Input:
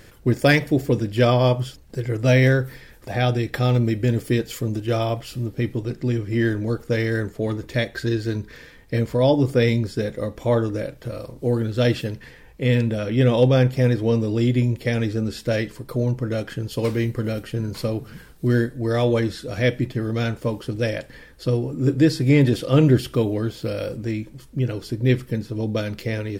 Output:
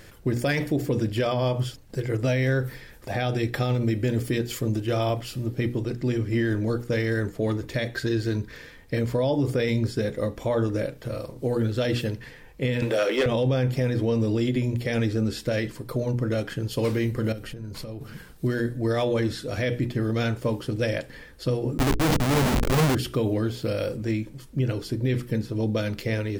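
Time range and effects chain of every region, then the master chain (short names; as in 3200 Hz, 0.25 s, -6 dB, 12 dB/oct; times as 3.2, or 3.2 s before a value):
12.82–13.26 HPF 380 Hz 24 dB/oct + sample leveller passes 2
17.32–18.01 low shelf 72 Hz +9 dB + compressor 10:1, threshold -32 dBFS
21.78–22.95 HPF 100 Hz + comb 4.6 ms, depth 50% + Schmitt trigger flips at -23 dBFS
whole clip: notches 60/120/180/240/300/360/420/480 Hz; limiter -16 dBFS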